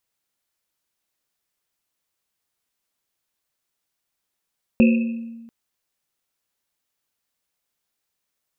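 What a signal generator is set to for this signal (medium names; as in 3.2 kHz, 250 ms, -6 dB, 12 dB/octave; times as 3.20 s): Risset drum length 0.69 s, pitch 230 Hz, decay 1.36 s, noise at 2.6 kHz, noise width 220 Hz, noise 15%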